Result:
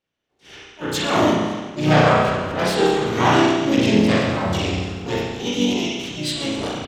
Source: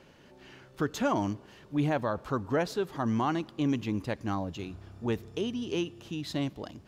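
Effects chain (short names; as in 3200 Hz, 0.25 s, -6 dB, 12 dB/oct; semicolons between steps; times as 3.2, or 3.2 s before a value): auto swell 0.173 s; gate -50 dBFS, range -39 dB; bell 3300 Hz +9.5 dB 1.5 oct; spring tank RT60 1.3 s, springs 33 ms, chirp 30 ms, DRR -6 dB; harmoniser -4 st -7 dB, +3 st -5 dB, +12 st -7 dB; gain +5 dB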